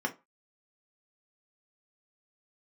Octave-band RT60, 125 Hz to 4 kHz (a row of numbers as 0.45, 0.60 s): 0.25, 0.25, 0.25, 0.30, 0.20, 0.15 s